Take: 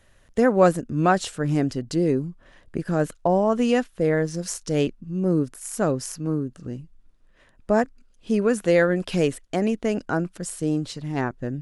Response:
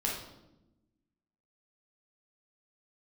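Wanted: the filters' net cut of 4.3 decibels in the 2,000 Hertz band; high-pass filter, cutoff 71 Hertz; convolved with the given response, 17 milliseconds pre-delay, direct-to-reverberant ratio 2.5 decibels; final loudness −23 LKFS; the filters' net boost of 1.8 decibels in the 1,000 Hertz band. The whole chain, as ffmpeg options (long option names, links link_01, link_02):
-filter_complex "[0:a]highpass=71,equalizer=frequency=1000:width_type=o:gain=4.5,equalizer=frequency=2000:width_type=o:gain=-8,asplit=2[link_01][link_02];[1:a]atrim=start_sample=2205,adelay=17[link_03];[link_02][link_03]afir=irnorm=-1:irlink=0,volume=-8dB[link_04];[link_01][link_04]amix=inputs=2:normalize=0,volume=-2dB"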